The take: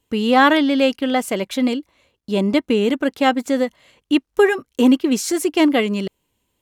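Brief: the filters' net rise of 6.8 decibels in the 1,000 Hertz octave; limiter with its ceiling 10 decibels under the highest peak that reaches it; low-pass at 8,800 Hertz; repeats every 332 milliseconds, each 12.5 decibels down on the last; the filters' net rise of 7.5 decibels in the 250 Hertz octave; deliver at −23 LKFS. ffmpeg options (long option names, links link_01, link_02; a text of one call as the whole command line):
ffmpeg -i in.wav -af "lowpass=8800,equalizer=frequency=250:width_type=o:gain=8,equalizer=frequency=1000:width_type=o:gain=8.5,alimiter=limit=-7.5dB:level=0:latency=1,aecho=1:1:332|664|996:0.237|0.0569|0.0137,volume=-7dB" out.wav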